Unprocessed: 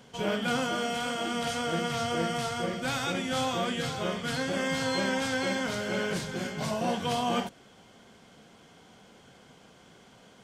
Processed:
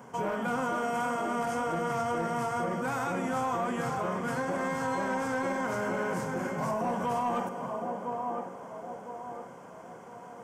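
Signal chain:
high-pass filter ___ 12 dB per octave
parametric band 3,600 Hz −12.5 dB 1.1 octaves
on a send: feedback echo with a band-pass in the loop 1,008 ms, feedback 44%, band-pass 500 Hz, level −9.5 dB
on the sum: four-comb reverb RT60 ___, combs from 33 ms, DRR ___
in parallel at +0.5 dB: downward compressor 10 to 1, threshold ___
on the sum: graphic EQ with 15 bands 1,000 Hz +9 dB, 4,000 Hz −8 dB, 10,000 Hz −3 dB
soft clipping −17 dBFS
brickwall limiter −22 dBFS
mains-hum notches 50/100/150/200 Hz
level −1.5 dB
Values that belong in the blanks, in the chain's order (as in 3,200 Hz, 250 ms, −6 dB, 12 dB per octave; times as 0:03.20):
100 Hz, 2.7 s, 13 dB, −38 dBFS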